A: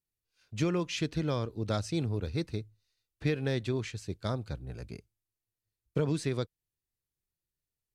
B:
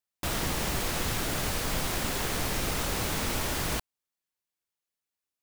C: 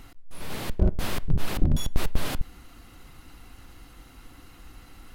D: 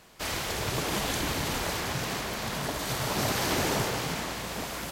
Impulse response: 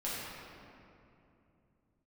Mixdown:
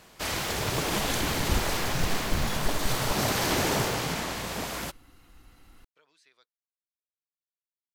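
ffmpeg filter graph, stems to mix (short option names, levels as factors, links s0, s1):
-filter_complex "[0:a]highpass=1300,equalizer=f=9000:w=1.1:g=-7.5,volume=0.112[s0];[1:a]adelay=150,volume=0.251[s1];[2:a]adelay=700,volume=0.422[s2];[3:a]volume=1.19[s3];[s0][s1][s2][s3]amix=inputs=4:normalize=0"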